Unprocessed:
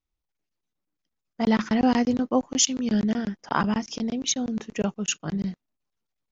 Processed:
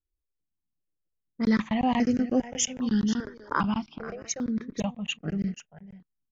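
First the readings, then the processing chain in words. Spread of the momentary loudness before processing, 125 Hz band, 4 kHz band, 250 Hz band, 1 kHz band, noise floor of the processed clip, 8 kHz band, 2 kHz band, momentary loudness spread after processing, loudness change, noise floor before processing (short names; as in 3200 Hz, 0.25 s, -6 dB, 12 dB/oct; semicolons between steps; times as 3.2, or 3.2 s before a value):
8 LU, -1.5 dB, -6.0 dB, -2.5 dB, -2.5 dB, -83 dBFS, n/a, -2.0 dB, 9 LU, -3.0 dB, -84 dBFS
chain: low-pass opened by the level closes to 420 Hz, open at -19.5 dBFS; echo 0.485 s -14 dB; step phaser 2.5 Hz 740–3600 Hz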